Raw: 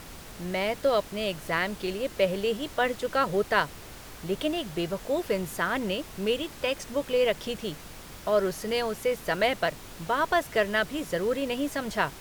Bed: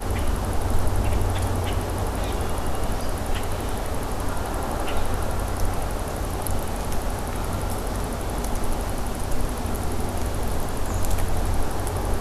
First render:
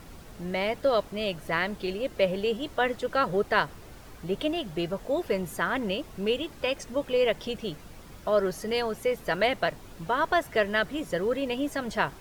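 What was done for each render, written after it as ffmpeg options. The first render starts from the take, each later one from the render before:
-af "afftdn=nr=8:nf=-45"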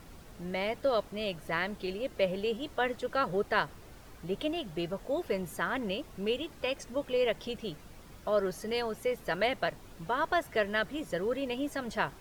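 -af "volume=0.596"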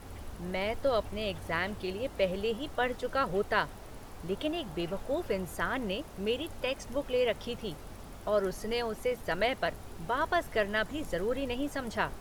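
-filter_complex "[1:a]volume=0.0891[s0];[0:a][s0]amix=inputs=2:normalize=0"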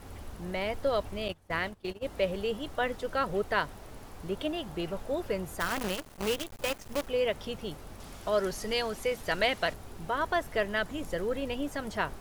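-filter_complex "[0:a]asettb=1/sr,asplit=3[s0][s1][s2];[s0]atrim=end=1.284[s3];[s1]atrim=start=1.28:end=2.06,asetpts=PTS-STARTPTS,afade=t=in:d=0.004:c=qsin,afade=t=out:st=0.776:d=0.004:c=qsin,agate=range=0.1:threshold=0.0158:ratio=16:release=100:detection=peak[s4];[s2]atrim=start=2.056[s5];[s3][s4]acrossfade=d=0.004:c1=hsin:c2=qsin[s6];[s6][s5]acrossfade=d=0.004:c1=qsin:c2=hsin,asettb=1/sr,asplit=3[s7][s8][s9];[s7]atrim=end=5.604[s10];[s8]atrim=start=5.6:end=7.08,asetpts=PTS-STARTPTS,afade=t=in:d=0.004:c=qsin,afade=t=out:st=1.476:d=0.004:c=qsin,acrusher=bits=6:dc=4:mix=0:aa=0.000001[s11];[s9]atrim=start=7.076[s12];[s10][s11]acrossfade=d=0.004:c1=hsin:c2=qsin[s13];[s13][s12]acrossfade=d=0.004:c1=qsin:c2=hsin,asettb=1/sr,asplit=3[s14][s15][s16];[s14]atrim=end=8.004[s17];[s15]atrim=start=8:end=9.74,asetpts=PTS-STARTPTS,afade=t=in:d=0.004:c=qsin,afade=t=out:st=1.736:d=0.004:c=qsin,equalizer=f=5200:w=0.36:g=6.5[s18];[s16]atrim=start=9.736[s19];[s17][s18]acrossfade=d=0.004:c1=hsin:c2=qsin[s20];[s20][s19]acrossfade=d=0.004:c1=qsin:c2=hsin"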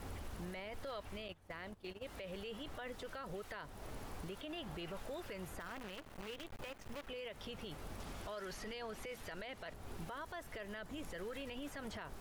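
-filter_complex "[0:a]acrossover=split=1200|3500[s0][s1][s2];[s0]acompressor=threshold=0.00794:ratio=4[s3];[s1]acompressor=threshold=0.00631:ratio=4[s4];[s2]acompressor=threshold=0.00126:ratio=4[s5];[s3][s4][s5]amix=inputs=3:normalize=0,alimiter=level_in=4.47:limit=0.0631:level=0:latency=1:release=38,volume=0.224"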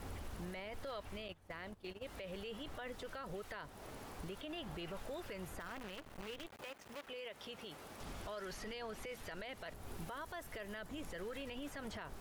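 -filter_complex "[0:a]asettb=1/sr,asplit=3[s0][s1][s2];[s0]atrim=end=3.684[s3];[s1]atrim=start=3.68:end=4.19,asetpts=PTS-STARTPTS,afade=t=in:d=0.004:c=qsin,afade=t=out:st=0.506:d=0.004:c=qsin,lowshelf=f=79:g=-11[s4];[s2]atrim=start=4.186[s5];[s3][s4]acrossfade=d=0.004:c1=hsin:c2=qsin[s6];[s6][s5]acrossfade=d=0.004:c1=qsin:c2=hsin,asettb=1/sr,asplit=3[s7][s8][s9];[s7]atrim=end=6.474[s10];[s8]atrim=start=6.47:end=8.01,asetpts=PTS-STARTPTS,afade=t=in:d=0.004:c=qsin,afade=t=out:st=1.536:d=0.004:c=qsin,highpass=f=320:p=1[s11];[s9]atrim=start=8.006[s12];[s10][s11]acrossfade=d=0.004:c1=hsin:c2=qsin[s13];[s13][s12]acrossfade=d=0.004:c1=qsin:c2=hsin,asettb=1/sr,asplit=3[s14][s15][s16];[s14]atrim=end=9.454[s17];[s15]atrim=start=9.45:end=10.89,asetpts=PTS-STARTPTS,afade=t=in:d=0.004:c=qsin,afade=t=out:st=1.436:d=0.004:c=qsin,equalizer=f=14000:t=o:w=1.2:g=5[s18];[s16]atrim=start=10.886[s19];[s17][s18]acrossfade=d=0.004:c1=hsin:c2=qsin[s20];[s20][s19]acrossfade=d=0.004:c1=qsin:c2=hsin"

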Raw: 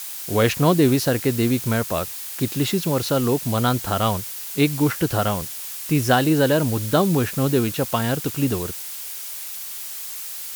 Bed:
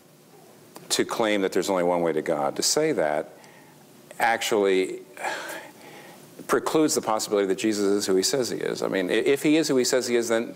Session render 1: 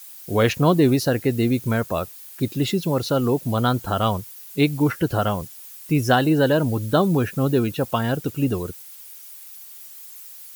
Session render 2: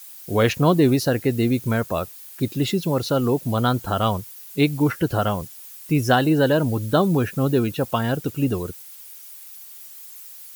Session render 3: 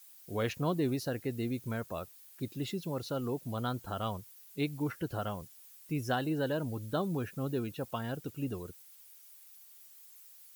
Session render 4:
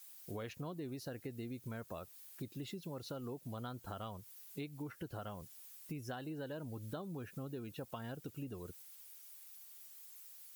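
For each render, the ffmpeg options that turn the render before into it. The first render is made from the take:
-af "afftdn=nr=13:nf=-33"
-af anull
-af "volume=0.188"
-af "acompressor=threshold=0.00794:ratio=6"

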